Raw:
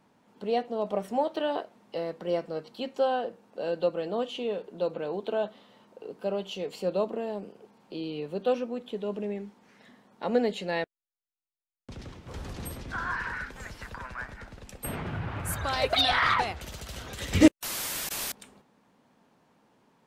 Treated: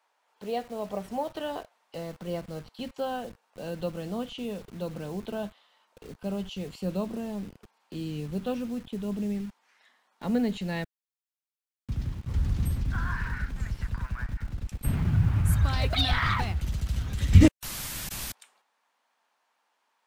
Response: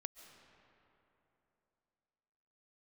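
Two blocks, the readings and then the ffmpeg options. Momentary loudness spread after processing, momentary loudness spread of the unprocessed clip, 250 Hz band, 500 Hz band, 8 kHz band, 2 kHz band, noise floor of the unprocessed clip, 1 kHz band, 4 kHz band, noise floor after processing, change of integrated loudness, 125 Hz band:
14 LU, 17 LU, +1.0 dB, -6.0 dB, -2.5 dB, -3.5 dB, under -85 dBFS, -5.0 dB, -3.0 dB, under -85 dBFS, +0.5 dB, +12.5 dB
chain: -filter_complex "[0:a]acrossover=split=590[s0][s1];[s0]acrusher=bits=7:mix=0:aa=0.000001[s2];[s2][s1]amix=inputs=2:normalize=0,asubboost=boost=9:cutoff=160,volume=0.708"

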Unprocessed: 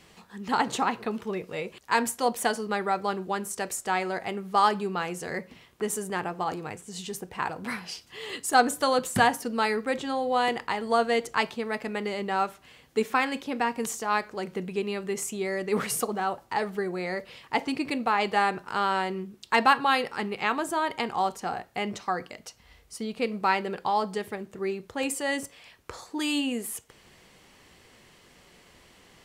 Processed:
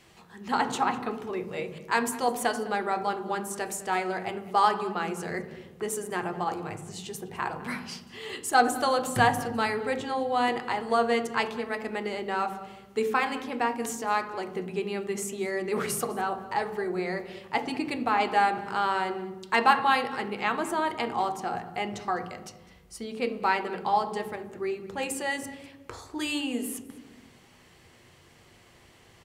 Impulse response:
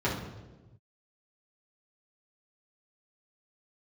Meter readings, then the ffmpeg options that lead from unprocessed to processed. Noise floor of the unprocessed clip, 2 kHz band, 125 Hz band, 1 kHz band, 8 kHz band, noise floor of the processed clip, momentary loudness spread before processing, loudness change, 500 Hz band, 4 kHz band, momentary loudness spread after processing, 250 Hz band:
-57 dBFS, -0.5 dB, 0.0 dB, 0.0 dB, -2.0 dB, -56 dBFS, 13 LU, -0.5 dB, -0.5 dB, -2.0 dB, 13 LU, -1.5 dB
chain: -filter_complex "[0:a]asplit=2[s0][s1];[s1]adelay=204.1,volume=0.126,highshelf=f=4000:g=-4.59[s2];[s0][s2]amix=inputs=2:normalize=0,asplit=2[s3][s4];[1:a]atrim=start_sample=2205,asetrate=37044,aresample=44100[s5];[s4][s5]afir=irnorm=-1:irlink=0,volume=0.141[s6];[s3][s6]amix=inputs=2:normalize=0,volume=0.708"

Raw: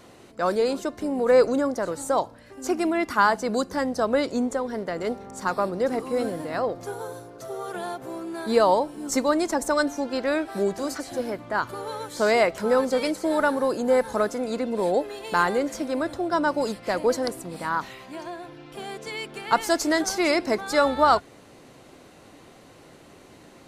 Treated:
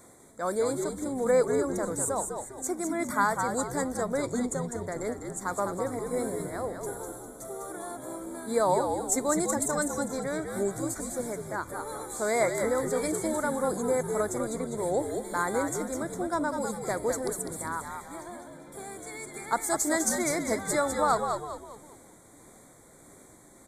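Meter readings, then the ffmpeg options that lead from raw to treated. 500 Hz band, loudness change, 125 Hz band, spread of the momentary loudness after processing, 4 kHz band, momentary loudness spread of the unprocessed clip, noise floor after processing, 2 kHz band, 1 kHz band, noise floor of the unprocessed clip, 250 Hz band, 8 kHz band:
-5.5 dB, -5.0 dB, +1.5 dB, 13 LU, -10.5 dB, 13 LU, -54 dBFS, -6.5 dB, -5.5 dB, -50 dBFS, -5.0 dB, +5.0 dB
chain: -filter_complex "[0:a]highshelf=f=6300:t=q:w=3:g=8,tremolo=f=1.6:d=0.33,asuperstop=centerf=2800:order=20:qfactor=3,asplit=6[s0][s1][s2][s3][s4][s5];[s1]adelay=201,afreqshift=-76,volume=0.531[s6];[s2]adelay=402,afreqshift=-152,volume=0.211[s7];[s3]adelay=603,afreqshift=-228,volume=0.0851[s8];[s4]adelay=804,afreqshift=-304,volume=0.0339[s9];[s5]adelay=1005,afreqshift=-380,volume=0.0136[s10];[s0][s6][s7][s8][s9][s10]amix=inputs=6:normalize=0,volume=0.562"

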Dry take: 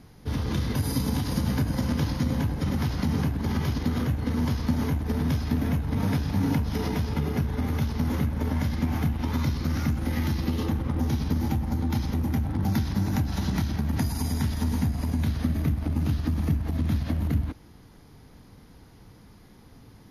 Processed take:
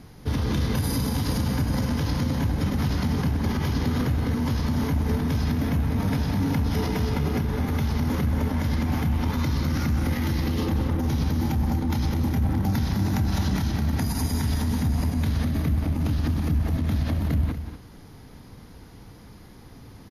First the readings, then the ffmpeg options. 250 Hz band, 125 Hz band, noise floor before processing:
+1.5 dB, +2.0 dB, -51 dBFS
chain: -af "alimiter=limit=0.0841:level=0:latency=1:release=33,aecho=1:1:183.7|239.1:0.282|0.282,volume=1.68"

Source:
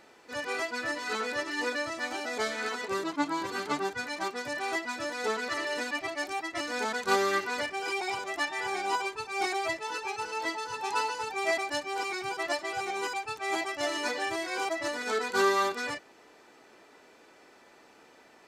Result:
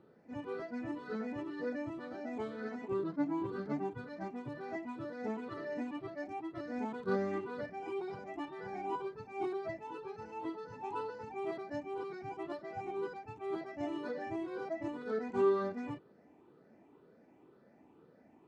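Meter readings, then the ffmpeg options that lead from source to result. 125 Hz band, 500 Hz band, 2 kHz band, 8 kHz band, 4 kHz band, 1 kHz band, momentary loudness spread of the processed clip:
+4.5 dB, -4.5 dB, -17.5 dB, under -25 dB, -23.5 dB, -11.0 dB, 8 LU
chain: -af "afftfilt=real='re*pow(10,9/40*sin(2*PI*(0.64*log(max(b,1)*sr/1024/100)/log(2)-(2)*(pts-256)/sr)))':imag='im*pow(10,9/40*sin(2*PI*(0.64*log(max(b,1)*sr/1024/100)/log(2)-(2)*(pts-256)/sr)))':win_size=1024:overlap=0.75,bandpass=f=150:t=q:w=1.3:csg=0,volume=1.88"

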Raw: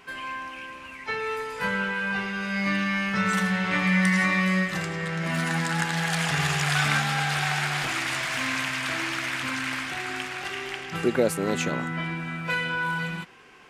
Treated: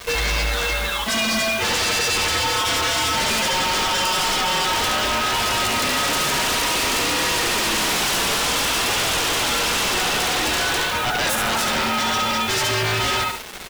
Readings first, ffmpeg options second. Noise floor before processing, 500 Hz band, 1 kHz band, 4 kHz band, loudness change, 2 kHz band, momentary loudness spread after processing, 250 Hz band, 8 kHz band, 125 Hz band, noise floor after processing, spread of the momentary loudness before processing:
-42 dBFS, +5.5 dB, +8.5 dB, +13.5 dB, +7.0 dB, +3.5 dB, 2 LU, -2.0 dB, +14.5 dB, -2.5 dB, -24 dBFS, 10 LU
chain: -af "highpass=66,bandreject=f=450:w=12,areverse,acompressor=threshold=0.0251:ratio=6,areverse,aeval=exprs='sgn(val(0))*max(abs(val(0))-0.002,0)':c=same,aeval=exprs='val(0)*sin(2*PI*1100*n/s)':c=same,aecho=1:1:71|142|213|284:0.501|0.165|0.0546|0.018,acrusher=bits=8:mix=0:aa=0.000001,flanger=delay=1.7:depth=3.7:regen=-38:speed=0.55:shape=triangular,aeval=exprs='0.0596*sin(PI/2*7.08*val(0)/0.0596)':c=same,volume=2.24"

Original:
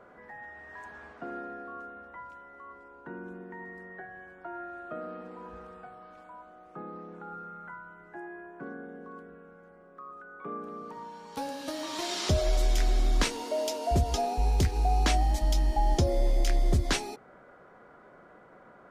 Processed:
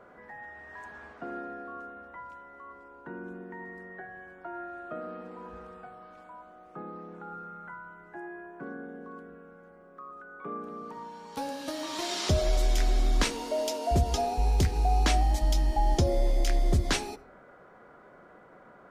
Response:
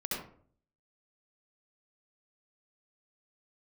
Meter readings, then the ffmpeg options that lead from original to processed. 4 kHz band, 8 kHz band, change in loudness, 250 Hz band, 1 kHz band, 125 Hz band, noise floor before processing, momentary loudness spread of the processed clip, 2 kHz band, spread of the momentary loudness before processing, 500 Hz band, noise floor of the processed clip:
+0.5 dB, +0.5 dB, +0.5 dB, +0.5 dB, +0.5 dB, +0.5 dB, -55 dBFS, 20 LU, +0.5 dB, 20 LU, +0.5 dB, -54 dBFS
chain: -filter_complex "[0:a]asplit=2[s0][s1];[1:a]atrim=start_sample=2205[s2];[s1][s2]afir=irnorm=-1:irlink=0,volume=0.0794[s3];[s0][s3]amix=inputs=2:normalize=0"

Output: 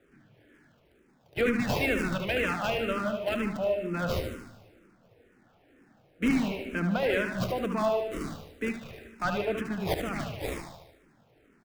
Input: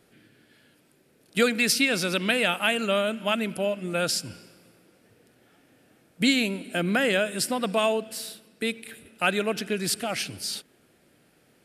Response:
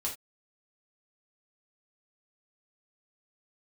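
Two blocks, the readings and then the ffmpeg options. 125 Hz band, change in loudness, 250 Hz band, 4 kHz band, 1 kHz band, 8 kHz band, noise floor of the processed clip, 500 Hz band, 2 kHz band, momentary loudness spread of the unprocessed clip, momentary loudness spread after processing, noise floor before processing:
+1.5 dB, -4.5 dB, -2.0 dB, -11.5 dB, -2.5 dB, -16.0 dB, -64 dBFS, -2.5 dB, -6.0 dB, 10 LU, 11 LU, -63 dBFS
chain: -filter_complex "[0:a]highshelf=f=11000:g=10.5,acrossover=split=180|2800[s0][s1][s2];[s2]acrusher=samples=41:mix=1:aa=0.000001:lfo=1:lforange=24.6:lforate=1.5[s3];[s0][s1][s3]amix=inputs=3:normalize=0,asoftclip=type=tanh:threshold=0.119,asplit=2[s4][s5];[s5]aecho=0:1:74|148|222|296|370|444|518:0.501|0.281|0.157|0.088|0.0493|0.0276|0.0155[s6];[s4][s6]amix=inputs=2:normalize=0,asplit=2[s7][s8];[s8]afreqshift=-2.1[s9];[s7][s9]amix=inputs=2:normalize=1"

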